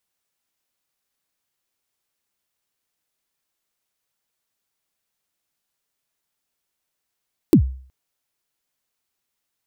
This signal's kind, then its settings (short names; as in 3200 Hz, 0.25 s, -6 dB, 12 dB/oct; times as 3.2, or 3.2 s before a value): kick drum length 0.37 s, from 380 Hz, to 65 Hz, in 89 ms, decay 0.48 s, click on, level -5 dB